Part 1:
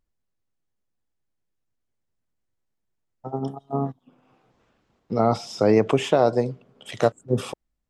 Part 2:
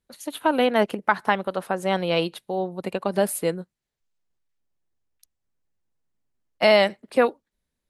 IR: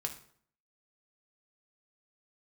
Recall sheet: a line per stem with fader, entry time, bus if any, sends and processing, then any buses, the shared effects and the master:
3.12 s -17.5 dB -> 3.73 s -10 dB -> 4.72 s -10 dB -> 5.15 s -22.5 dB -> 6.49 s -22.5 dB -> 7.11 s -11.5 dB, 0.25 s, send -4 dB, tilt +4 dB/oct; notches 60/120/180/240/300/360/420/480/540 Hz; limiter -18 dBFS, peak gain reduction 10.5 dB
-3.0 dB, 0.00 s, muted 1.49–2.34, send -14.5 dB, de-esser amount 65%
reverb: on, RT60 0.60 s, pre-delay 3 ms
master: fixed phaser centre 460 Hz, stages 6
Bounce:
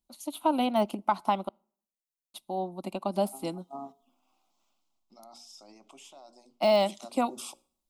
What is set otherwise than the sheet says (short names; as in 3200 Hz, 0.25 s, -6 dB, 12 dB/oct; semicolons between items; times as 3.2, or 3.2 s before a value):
stem 1: entry 0.25 s -> 0.00 s; reverb return -8.5 dB